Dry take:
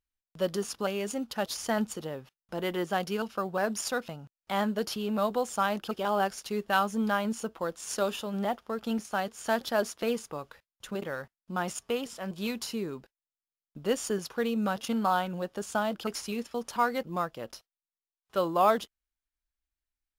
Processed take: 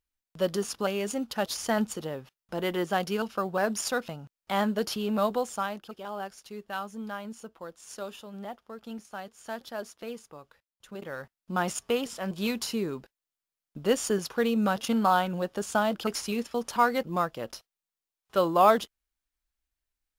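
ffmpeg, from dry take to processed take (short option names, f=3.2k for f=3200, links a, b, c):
-af "volume=14.5dB,afade=t=out:st=5.26:d=0.57:silence=0.281838,afade=t=in:st=10.87:d=0.69:silence=0.237137"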